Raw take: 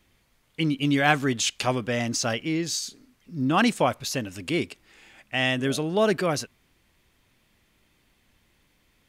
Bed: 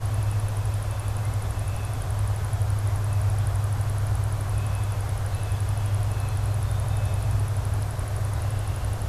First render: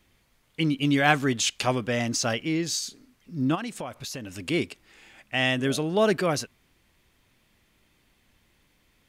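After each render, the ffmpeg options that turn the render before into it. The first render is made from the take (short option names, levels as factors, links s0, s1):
-filter_complex "[0:a]asplit=3[s0][s1][s2];[s0]afade=t=out:st=3.54:d=0.02[s3];[s1]acompressor=threshold=0.0224:ratio=4:attack=3.2:release=140:knee=1:detection=peak,afade=t=in:st=3.54:d=0.02,afade=t=out:st=4.32:d=0.02[s4];[s2]afade=t=in:st=4.32:d=0.02[s5];[s3][s4][s5]amix=inputs=3:normalize=0"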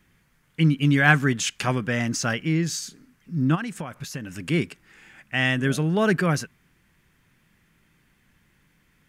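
-af "equalizer=f=160:t=o:w=0.67:g=10,equalizer=f=630:t=o:w=0.67:g=-4,equalizer=f=1600:t=o:w=0.67:g=7,equalizer=f=4000:t=o:w=0.67:g=-5"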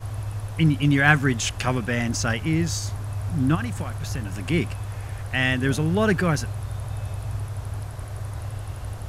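-filter_complex "[1:a]volume=0.531[s0];[0:a][s0]amix=inputs=2:normalize=0"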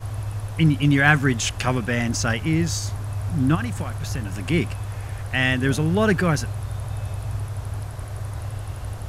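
-af "volume=1.19,alimiter=limit=0.708:level=0:latency=1"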